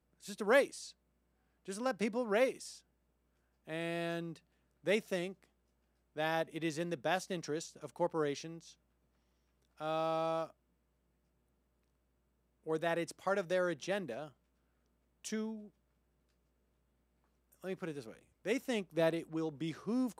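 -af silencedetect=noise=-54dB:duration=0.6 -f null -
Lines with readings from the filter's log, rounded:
silence_start: 0.91
silence_end: 1.65 | silence_duration: 0.74
silence_start: 2.80
silence_end: 3.67 | silence_duration: 0.88
silence_start: 5.44
silence_end: 6.16 | silence_duration: 0.72
silence_start: 8.73
silence_end: 9.80 | silence_duration: 1.07
silence_start: 10.51
silence_end: 12.66 | silence_duration: 2.16
silence_start: 14.30
silence_end: 15.25 | silence_duration: 0.95
silence_start: 15.68
silence_end: 17.53 | silence_duration: 1.85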